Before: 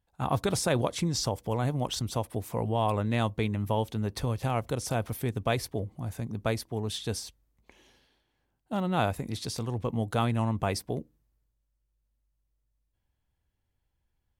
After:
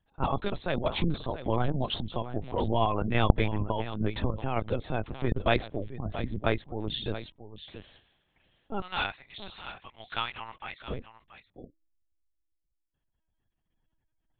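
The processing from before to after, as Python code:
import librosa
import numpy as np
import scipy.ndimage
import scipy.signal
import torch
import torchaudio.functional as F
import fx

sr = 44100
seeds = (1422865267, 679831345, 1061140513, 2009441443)

y = fx.highpass(x, sr, hz=1300.0, slope=12, at=(8.81, 10.83))
y = fx.spec_gate(y, sr, threshold_db=-30, keep='strong')
y = fx.high_shelf(y, sr, hz=2300.0, db=8.0)
y = fx.tremolo_random(y, sr, seeds[0], hz=3.5, depth_pct=55)
y = fx.air_absorb(y, sr, metres=68.0)
y = y + 10.0 ** (-12.5 / 20.0) * np.pad(y, (int(676 * sr / 1000.0), 0))[:len(y)]
y = fx.lpc_vocoder(y, sr, seeds[1], excitation='pitch_kept', order=10)
y = fx.doppler_dist(y, sr, depth_ms=0.49)
y = y * librosa.db_to_amplitude(3.0)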